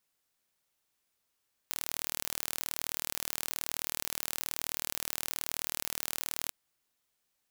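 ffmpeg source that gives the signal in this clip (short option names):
-f lavfi -i "aevalsrc='0.447*eq(mod(n,1134),0)':d=4.8:s=44100"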